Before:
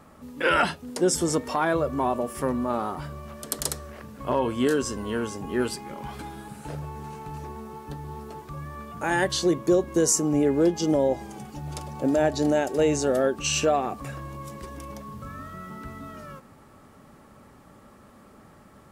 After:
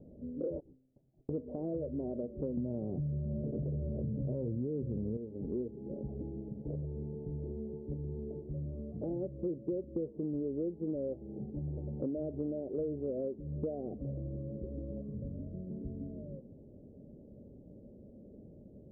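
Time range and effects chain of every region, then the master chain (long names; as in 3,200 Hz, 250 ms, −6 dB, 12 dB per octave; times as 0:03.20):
0:00.60–0:01.29: voice inversion scrambler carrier 3,000 Hz + downward compressor 5 to 1, threshold −31 dBFS + tuned comb filter 130 Hz, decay 0.85 s, mix 70%
0:02.57–0:05.17: parametric band 130 Hz +14 dB 0.92 octaves + envelope flattener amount 70%
whole clip: Butterworth low-pass 570 Hz 48 dB per octave; downward compressor 6 to 1, threshold −34 dBFS; every ending faded ahead of time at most 590 dB per second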